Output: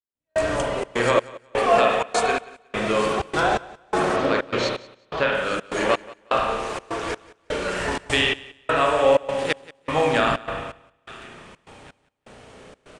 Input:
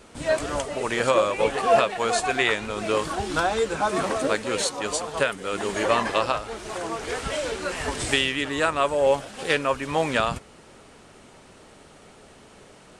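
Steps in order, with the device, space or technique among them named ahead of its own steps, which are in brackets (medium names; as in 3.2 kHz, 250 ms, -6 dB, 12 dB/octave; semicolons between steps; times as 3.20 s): 4.16–5.35 s: low-pass 5.1 kHz 24 dB/octave; low-pass 9.7 kHz 12 dB/octave; feedback echo behind a high-pass 858 ms, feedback 33%, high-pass 1.5 kHz, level -15 dB; spring tank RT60 1.5 s, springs 33/58 ms, chirp 75 ms, DRR -1.5 dB; trance gate with a delay (trance gate "...xxxx.xx" 126 bpm -60 dB; feedback delay 181 ms, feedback 20%, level -20.5 dB)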